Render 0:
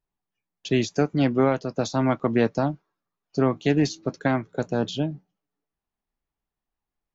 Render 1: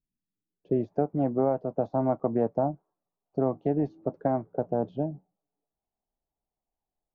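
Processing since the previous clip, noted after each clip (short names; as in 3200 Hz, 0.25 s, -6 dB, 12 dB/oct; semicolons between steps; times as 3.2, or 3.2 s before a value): compressor 1.5:1, threshold -25 dBFS, peak gain reduction 4 dB; low-pass sweep 240 Hz -> 720 Hz, 0.29–0.89; gain -4 dB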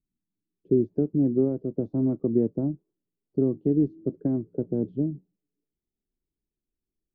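EQ curve 150 Hz 0 dB, 370 Hz +3 dB, 740 Hz -25 dB, 1800 Hz -19 dB; gain +3.5 dB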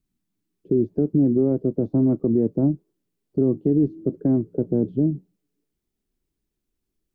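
limiter -19 dBFS, peak gain reduction 8.5 dB; gain +8 dB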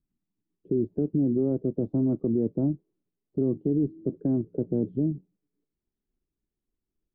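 LPF 1100 Hz 6 dB/oct; in parallel at +0.5 dB: level quantiser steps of 13 dB; on the sum: gain -8.5 dB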